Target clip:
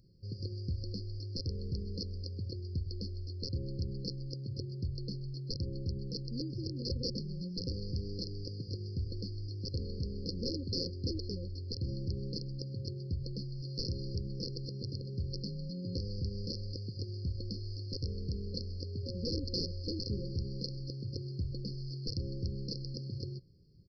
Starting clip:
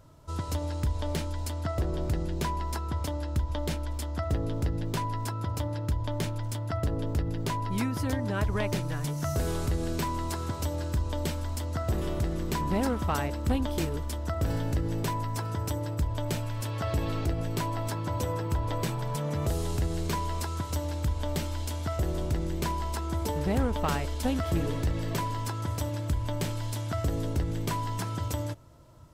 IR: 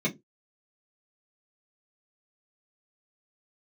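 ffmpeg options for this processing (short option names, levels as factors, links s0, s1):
-af "asetrate=53802,aresample=44100,lowshelf=f=630:t=q:w=3:g=-8,aresample=11025,aeval=exprs='(mod(15*val(0)+1,2)-1)/15':c=same,aresample=44100,afftfilt=real='re*(1-between(b*sr/4096,550,4200))':imag='im*(1-between(b*sr/4096,550,4200))':win_size=4096:overlap=0.75,volume=1.12"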